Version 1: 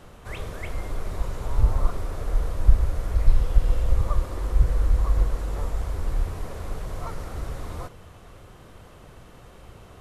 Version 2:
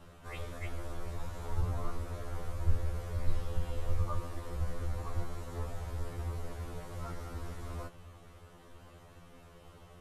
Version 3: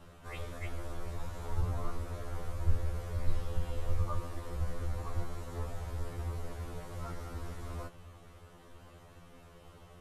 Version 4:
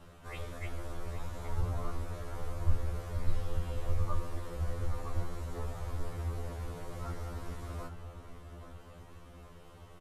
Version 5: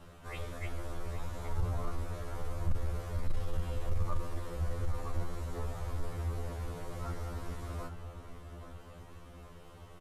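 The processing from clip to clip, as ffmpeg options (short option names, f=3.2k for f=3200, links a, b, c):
-af "afftfilt=real='re*2*eq(mod(b,4),0)':imag='im*2*eq(mod(b,4),0)':win_size=2048:overlap=0.75,volume=-5dB"
-af anull
-filter_complex "[0:a]asplit=2[a][b];[b]adelay=824,lowpass=f=2k:p=1,volume=-9dB,asplit=2[c][d];[d]adelay=824,lowpass=f=2k:p=1,volume=0.52,asplit=2[e][f];[f]adelay=824,lowpass=f=2k:p=1,volume=0.52,asplit=2[g][h];[h]adelay=824,lowpass=f=2k:p=1,volume=0.52,asplit=2[i][j];[j]adelay=824,lowpass=f=2k:p=1,volume=0.52,asplit=2[k][l];[l]adelay=824,lowpass=f=2k:p=1,volume=0.52[m];[a][c][e][g][i][k][m]amix=inputs=7:normalize=0"
-af "asoftclip=type=tanh:threshold=-22dB,volume=1dB"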